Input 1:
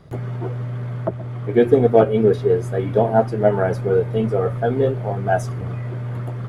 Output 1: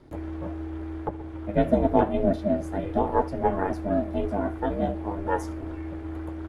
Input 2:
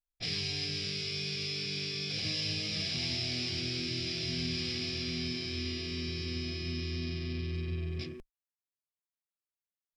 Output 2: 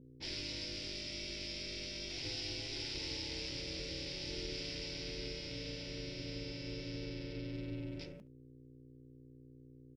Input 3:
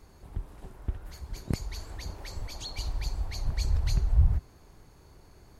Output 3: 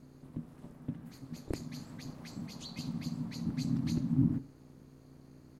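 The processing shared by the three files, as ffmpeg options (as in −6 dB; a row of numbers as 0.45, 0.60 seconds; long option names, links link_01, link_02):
-af "flanger=delay=2:depth=9.6:regen=-88:speed=0.85:shape=triangular,aeval=exprs='val(0)+0.00224*(sin(2*PI*60*n/s)+sin(2*PI*2*60*n/s)/2+sin(2*PI*3*60*n/s)/3+sin(2*PI*4*60*n/s)/4+sin(2*PI*5*60*n/s)/5)':channel_layout=same,aeval=exprs='val(0)*sin(2*PI*200*n/s)':channel_layout=same,aecho=1:1:71:0.0891"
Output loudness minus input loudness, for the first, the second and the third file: −7.5, −7.5, −4.0 LU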